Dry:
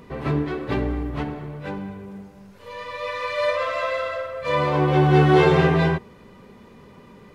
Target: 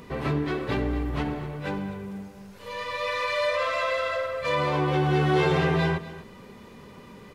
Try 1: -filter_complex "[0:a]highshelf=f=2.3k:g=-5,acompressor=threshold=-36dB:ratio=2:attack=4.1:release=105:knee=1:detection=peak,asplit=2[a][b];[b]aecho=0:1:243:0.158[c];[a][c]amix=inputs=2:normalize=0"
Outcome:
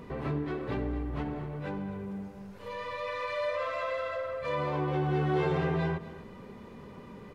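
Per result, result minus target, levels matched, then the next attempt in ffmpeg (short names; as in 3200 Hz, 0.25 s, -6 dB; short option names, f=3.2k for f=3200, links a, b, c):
4000 Hz band -5.5 dB; compressor: peak gain reduction +5.5 dB
-filter_complex "[0:a]highshelf=f=2.3k:g=5.5,acompressor=threshold=-36dB:ratio=2:attack=4.1:release=105:knee=1:detection=peak,asplit=2[a][b];[b]aecho=0:1:243:0.158[c];[a][c]amix=inputs=2:normalize=0"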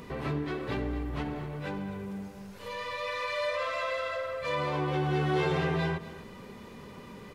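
compressor: peak gain reduction +5.5 dB
-filter_complex "[0:a]highshelf=f=2.3k:g=5.5,acompressor=threshold=-24.5dB:ratio=2:attack=4.1:release=105:knee=1:detection=peak,asplit=2[a][b];[b]aecho=0:1:243:0.158[c];[a][c]amix=inputs=2:normalize=0"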